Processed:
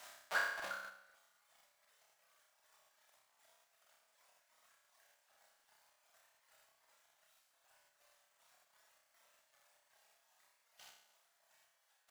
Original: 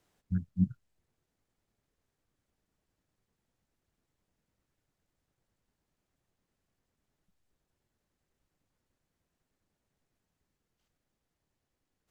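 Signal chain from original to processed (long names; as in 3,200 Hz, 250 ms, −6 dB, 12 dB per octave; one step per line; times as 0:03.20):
reverb reduction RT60 0.8 s
automatic gain control gain up to 4.5 dB
reverb reduction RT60 1.9 s
in parallel at −11 dB: comparator with hysteresis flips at −41.5 dBFS
on the sum: elliptic high-pass filter 630 Hz, stop band 60 dB
leveller curve on the samples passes 2
amplitude tremolo 2.6 Hz, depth 64%
flutter between parallel walls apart 5.3 metres, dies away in 0.78 s
coupled-rooms reverb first 0.51 s, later 2.2 s, from −19 dB, DRR 12 dB
regular buffer underruns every 0.25 s, samples 2,048, repeat, from 0:00.55
level +17 dB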